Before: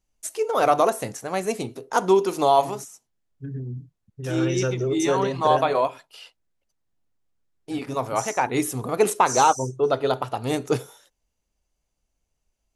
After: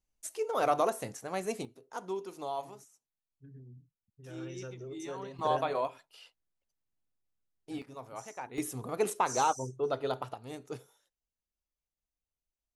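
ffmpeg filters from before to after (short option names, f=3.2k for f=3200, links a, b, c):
-af "asetnsamples=n=441:p=0,asendcmd='1.65 volume volume -19dB;5.39 volume volume -10.5dB;7.82 volume volume -19dB;8.58 volume volume -10.5dB;10.34 volume volume -18.5dB',volume=-9dB"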